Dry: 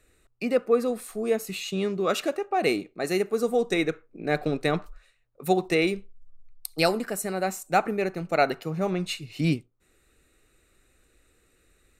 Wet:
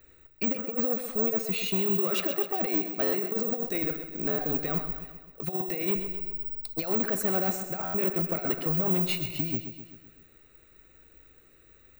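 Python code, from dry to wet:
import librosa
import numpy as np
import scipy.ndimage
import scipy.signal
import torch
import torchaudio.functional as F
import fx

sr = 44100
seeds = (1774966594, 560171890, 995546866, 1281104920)

p1 = fx.lowpass(x, sr, hz=4000.0, slope=6)
p2 = fx.over_compress(p1, sr, threshold_db=-27.0, ratio=-0.5)
p3 = 10.0 ** (-24.0 / 20.0) * np.tanh(p2 / 10.0 ** (-24.0 / 20.0))
p4 = p3 + fx.echo_feedback(p3, sr, ms=129, feedback_pct=56, wet_db=-10.0, dry=0)
p5 = (np.kron(scipy.signal.resample_poly(p4, 1, 2), np.eye(2)[0]) * 2)[:len(p4)]
y = fx.buffer_glitch(p5, sr, at_s=(3.03, 4.28, 7.84), block=512, repeats=8)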